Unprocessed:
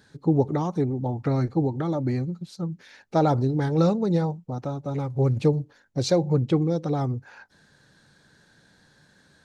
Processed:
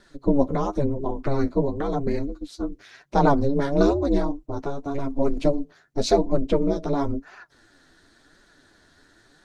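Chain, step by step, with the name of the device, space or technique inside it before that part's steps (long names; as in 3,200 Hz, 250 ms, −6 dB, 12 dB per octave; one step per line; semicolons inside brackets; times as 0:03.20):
alien voice (ring modulation 140 Hz; flanger 0.95 Hz, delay 4.7 ms, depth 8.2 ms, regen +21%)
level +8 dB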